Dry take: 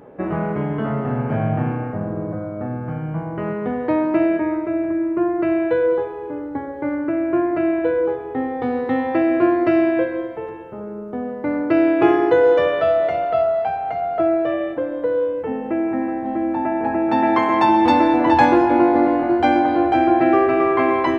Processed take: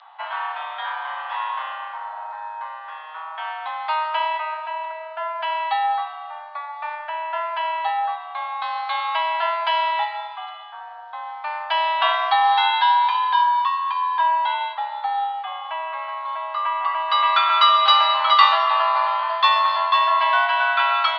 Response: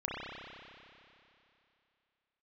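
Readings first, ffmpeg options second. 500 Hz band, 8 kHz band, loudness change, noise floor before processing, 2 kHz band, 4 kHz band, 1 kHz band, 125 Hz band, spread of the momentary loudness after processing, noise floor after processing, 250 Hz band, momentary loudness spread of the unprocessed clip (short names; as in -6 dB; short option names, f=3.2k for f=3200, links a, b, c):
-15.0 dB, n/a, -1.5 dB, -31 dBFS, +3.0 dB, +15.5 dB, +3.0 dB, under -40 dB, 17 LU, -36 dBFS, under -40 dB, 12 LU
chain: -af "aexciter=amount=5.8:drive=8.7:freq=3k,highpass=f=540:t=q:w=0.5412,highpass=f=540:t=q:w=1.307,lowpass=f=3.6k:t=q:w=0.5176,lowpass=f=3.6k:t=q:w=0.7071,lowpass=f=3.6k:t=q:w=1.932,afreqshift=310,volume=1dB"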